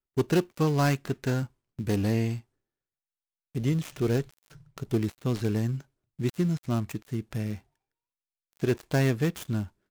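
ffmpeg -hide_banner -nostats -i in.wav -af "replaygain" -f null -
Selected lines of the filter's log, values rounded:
track_gain = +9.3 dB
track_peak = 0.104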